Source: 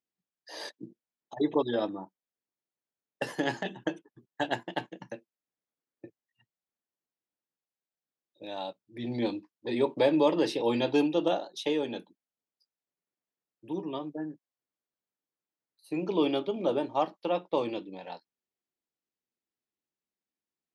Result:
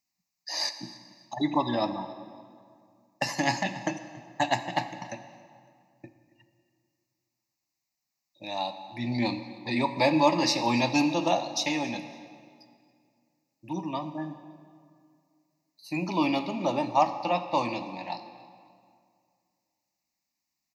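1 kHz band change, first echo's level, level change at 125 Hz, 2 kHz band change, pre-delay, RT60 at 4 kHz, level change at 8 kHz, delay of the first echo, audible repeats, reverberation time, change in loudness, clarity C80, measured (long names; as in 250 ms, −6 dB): +7.5 dB, −22.5 dB, +6.5 dB, +6.5 dB, 21 ms, 1.6 s, +14.0 dB, 279 ms, 2, 2.2 s, +2.0 dB, 11.5 dB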